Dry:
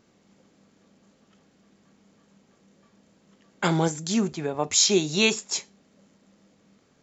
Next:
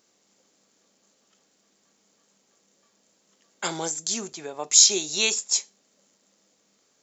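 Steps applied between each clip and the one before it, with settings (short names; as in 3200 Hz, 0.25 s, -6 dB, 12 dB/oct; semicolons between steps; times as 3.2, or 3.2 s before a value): tone controls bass -14 dB, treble +13 dB; gain -5 dB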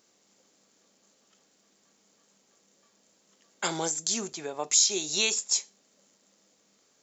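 compressor 2:1, threshold -24 dBFS, peak gain reduction 8 dB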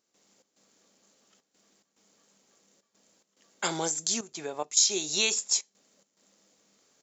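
step gate ".xx.xxxxxx" 107 bpm -12 dB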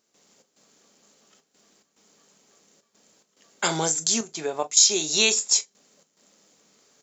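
reverb, pre-delay 4 ms, DRR 10.5 dB; gain +5.5 dB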